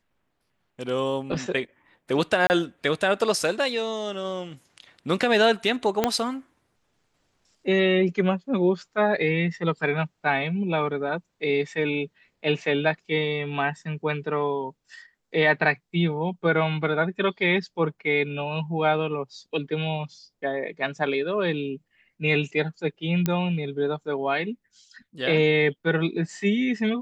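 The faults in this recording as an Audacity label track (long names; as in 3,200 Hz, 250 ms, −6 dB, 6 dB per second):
2.470000	2.500000	drop-out 29 ms
6.040000	6.040000	click −6 dBFS
23.260000	23.260000	click −10 dBFS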